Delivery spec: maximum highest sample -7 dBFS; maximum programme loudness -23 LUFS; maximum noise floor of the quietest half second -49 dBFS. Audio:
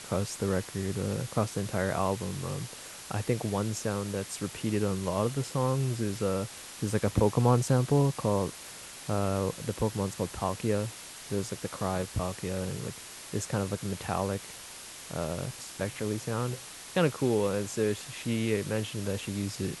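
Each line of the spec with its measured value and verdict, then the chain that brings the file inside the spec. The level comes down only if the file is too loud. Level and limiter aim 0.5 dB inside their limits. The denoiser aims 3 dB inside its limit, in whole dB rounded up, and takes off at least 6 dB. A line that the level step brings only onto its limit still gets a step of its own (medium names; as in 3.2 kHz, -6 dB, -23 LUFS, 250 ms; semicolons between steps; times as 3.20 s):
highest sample -10.5 dBFS: pass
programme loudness -31.0 LUFS: pass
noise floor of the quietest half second -45 dBFS: fail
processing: noise reduction 7 dB, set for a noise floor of -45 dBFS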